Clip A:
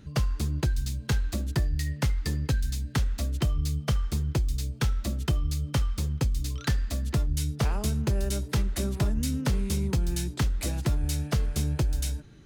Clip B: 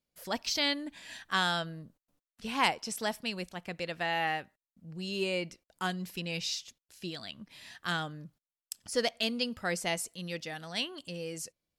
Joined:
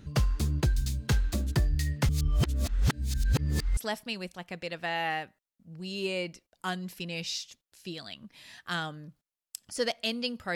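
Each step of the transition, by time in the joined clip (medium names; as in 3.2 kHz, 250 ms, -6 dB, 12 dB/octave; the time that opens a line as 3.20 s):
clip A
2.09–3.77 s: reverse
3.77 s: go over to clip B from 2.94 s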